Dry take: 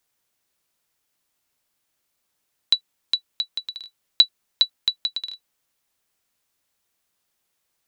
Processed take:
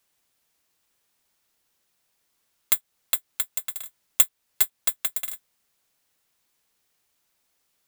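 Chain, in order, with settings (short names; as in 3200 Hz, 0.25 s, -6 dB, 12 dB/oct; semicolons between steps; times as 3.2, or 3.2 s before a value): FFT order left unsorted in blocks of 256 samples; in parallel at 0 dB: compressor, threshold -28 dBFS, peak gain reduction 17 dB; on the sum: gain -3.5 dB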